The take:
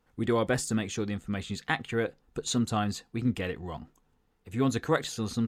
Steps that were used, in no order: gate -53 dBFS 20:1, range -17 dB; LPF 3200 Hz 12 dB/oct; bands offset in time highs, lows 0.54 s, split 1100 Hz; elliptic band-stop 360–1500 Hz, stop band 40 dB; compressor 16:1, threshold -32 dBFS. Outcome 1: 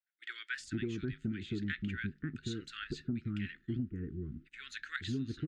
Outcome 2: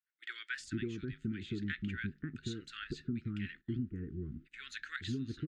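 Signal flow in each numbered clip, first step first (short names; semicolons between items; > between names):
bands offset in time > gate > elliptic band-stop > compressor > LPF; bands offset in time > compressor > elliptic band-stop > gate > LPF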